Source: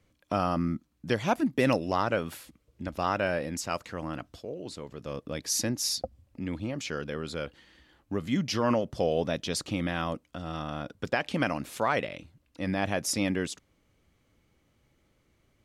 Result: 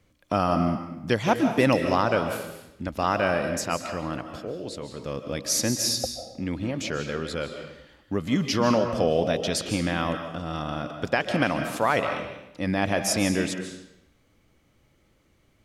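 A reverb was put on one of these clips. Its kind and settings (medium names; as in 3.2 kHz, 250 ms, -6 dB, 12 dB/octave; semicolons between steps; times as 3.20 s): algorithmic reverb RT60 0.85 s, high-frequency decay 0.9×, pre-delay 110 ms, DRR 6.5 dB; trim +4 dB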